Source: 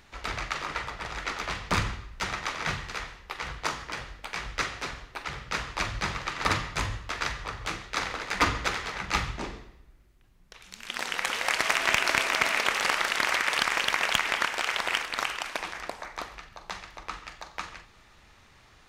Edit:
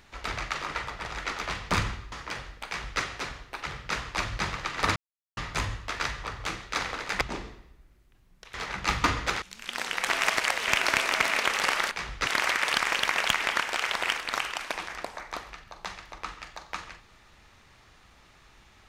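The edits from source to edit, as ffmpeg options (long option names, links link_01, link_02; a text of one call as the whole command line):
ffmpeg -i in.wav -filter_complex "[0:a]asplit=11[link_01][link_02][link_03][link_04][link_05][link_06][link_07][link_08][link_09][link_10][link_11];[link_01]atrim=end=2.122[link_12];[link_02]atrim=start=3.738:end=6.58,asetpts=PTS-STARTPTS,afade=type=out:start_time=2.838:duration=0.004:curve=hsin,apad=pad_dur=0.41[link_13];[link_03]atrim=start=6.58:end=8.422,asetpts=PTS-STARTPTS,afade=type=in:duration=0.004:curve=hsin[link_14];[link_04]atrim=start=9.298:end=10.632[link_15];[link_05]atrim=start=8.798:end=9.302[link_16];[link_06]atrim=start=8.418:end=8.802[link_17];[link_07]atrim=start=10.628:end=11.312[link_18];[link_08]atrim=start=11.308:end=11.892,asetpts=PTS-STARTPTS,areverse[link_19];[link_09]atrim=start=11.888:end=13.122[link_20];[link_10]atrim=start=4.278:end=4.642[link_21];[link_11]atrim=start=13.118[link_22];[link_13][link_14]concat=n=2:v=0:a=1[link_23];[link_12][link_23]acrossfade=duration=0.004:curve1=hsin:curve2=hsin[link_24];[link_24][link_15]acrossfade=duration=0.004:curve1=hsin:curve2=hsin[link_25];[link_25][link_16]acrossfade=duration=0.004:curve1=hsin:curve2=hsin[link_26];[link_26][link_17]acrossfade=duration=0.004:curve1=hsin:curve2=hsin[link_27];[link_27][link_18]acrossfade=duration=0.004:curve1=hsin:curve2=hsin[link_28];[link_28][link_19]acrossfade=duration=0.004:curve1=hsin:curve2=hsin[link_29];[link_29][link_20]acrossfade=duration=0.004:curve1=hsin:curve2=hsin[link_30];[link_30][link_21]acrossfade=duration=0.004:curve1=hsin:curve2=hsin[link_31];[link_31][link_22]acrossfade=duration=0.004:curve1=hsin:curve2=hsin" out.wav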